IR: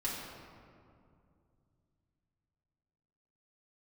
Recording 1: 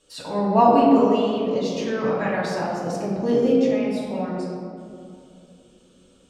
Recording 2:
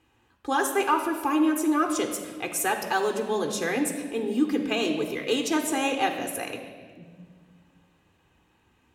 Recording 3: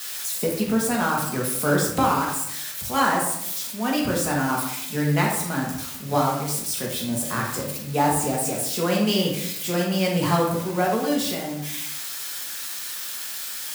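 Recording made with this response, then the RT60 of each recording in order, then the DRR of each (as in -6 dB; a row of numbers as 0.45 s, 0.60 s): 1; 2.4 s, 1.7 s, 0.80 s; -6.5 dB, 4.0 dB, -3.0 dB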